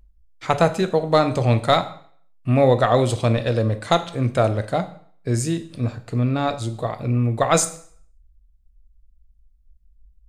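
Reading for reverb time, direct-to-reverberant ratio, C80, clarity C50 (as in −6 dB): 0.55 s, 9.0 dB, 18.0 dB, 14.0 dB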